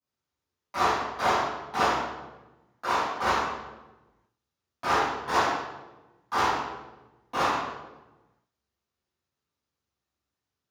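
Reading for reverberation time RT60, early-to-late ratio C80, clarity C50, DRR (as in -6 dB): 1.1 s, 2.5 dB, -1.0 dB, -17.0 dB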